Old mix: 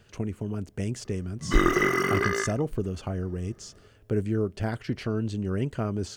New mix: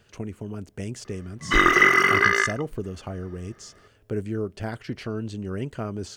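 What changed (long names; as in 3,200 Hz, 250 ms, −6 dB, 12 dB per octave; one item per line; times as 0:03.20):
background: add parametric band 2,200 Hz +11 dB 2.6 octaves
master: add low-shelf EQ 270 Hz −4 dB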